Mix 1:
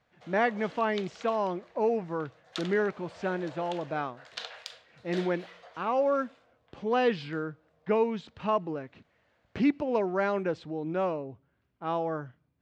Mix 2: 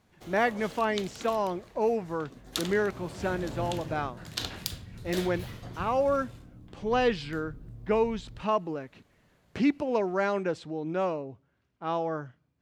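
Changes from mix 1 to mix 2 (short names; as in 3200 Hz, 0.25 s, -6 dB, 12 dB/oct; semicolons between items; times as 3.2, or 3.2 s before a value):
background: remove rippled Chebyshev high-pass 460 Hz, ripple 3 dB; master: remove air absorption 120 m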